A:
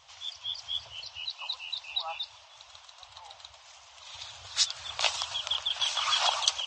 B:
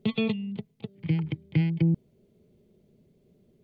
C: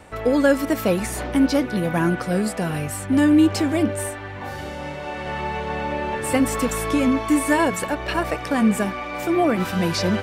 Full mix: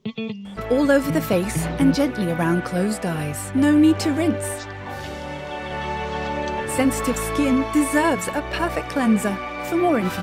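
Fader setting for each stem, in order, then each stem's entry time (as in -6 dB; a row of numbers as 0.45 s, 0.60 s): -16.5 dB, -2.0 dB, 0.0 dB; 0.00 s, 0.00 s, 0.45 s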